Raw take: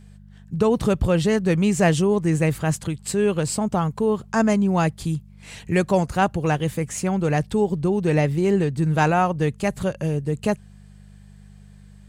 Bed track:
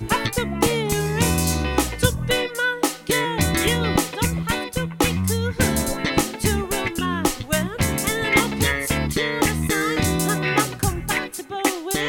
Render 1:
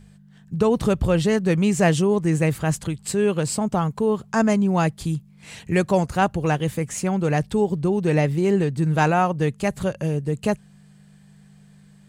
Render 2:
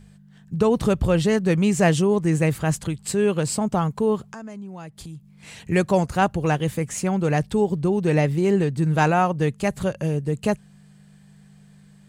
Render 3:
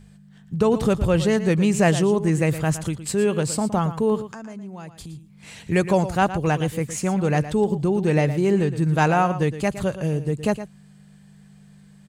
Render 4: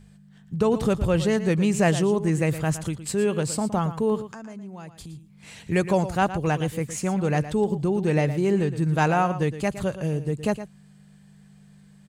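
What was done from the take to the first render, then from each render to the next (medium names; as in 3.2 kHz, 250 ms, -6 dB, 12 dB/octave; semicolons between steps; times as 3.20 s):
de-hum 50 Hz, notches 2
4.27–5.62 s: compression 4:1, threshold -37 dBFS
delay 115 ms -12.5 dB
trim -2.5 dB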